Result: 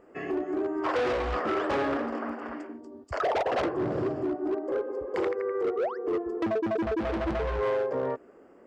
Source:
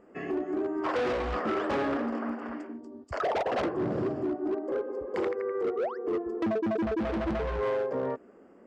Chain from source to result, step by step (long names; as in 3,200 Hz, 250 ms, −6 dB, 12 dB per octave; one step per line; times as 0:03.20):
parametric band 210 Hz −7.5 dB 0.56 octaves
level +2 dB